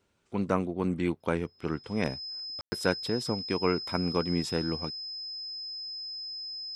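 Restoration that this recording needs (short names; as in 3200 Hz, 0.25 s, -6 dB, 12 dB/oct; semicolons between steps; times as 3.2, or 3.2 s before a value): notch 5100 Hz, Q 30; room tone fill 2.61–2.72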